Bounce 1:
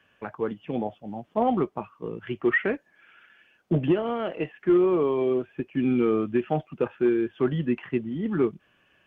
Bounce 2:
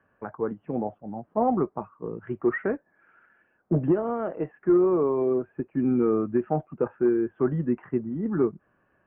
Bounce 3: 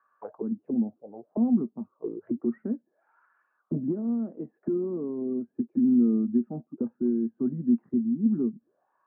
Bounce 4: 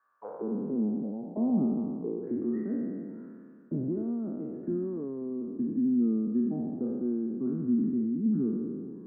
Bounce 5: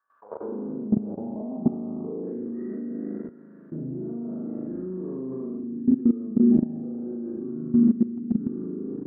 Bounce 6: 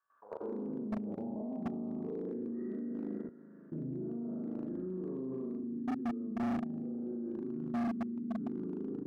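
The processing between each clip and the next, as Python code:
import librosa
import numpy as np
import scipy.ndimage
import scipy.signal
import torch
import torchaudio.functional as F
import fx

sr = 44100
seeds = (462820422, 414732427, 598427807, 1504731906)

y1 = scipy.signal.sosfilt(scipy.signal.butter(4, 1500.0, 'lowpass', fs=sr, output='sos'), x)
y2 = fx.auto_wah(y1, sr, base_hz=230.0, top_hz=1200.0, q=7.6, full_db=-27.0, direction='down')
y2 = y2 * librosa.db_to_amplitude(8.0)
y3 = fx.spec_trails(y2, sr, decay_s=2.1)
y3 = y3 * librosa.db_to_amplitude(-5.5)
y4 = fx.rev_spring(y3, sr, rt60_s=1.2, pass_ms=(38,), chirp_ms=40, drr_db=-9.0)
y4 = fx.level_steps(y4, sr, step_db=16)
y5 = np.clip(10.0 ** (25.0 / 20.0) * y4, -1.0, 1.0) / 10.0 ** (25.0 / 20.0)
y5 = y5 * librosa.db_to_amplitude(-6.5)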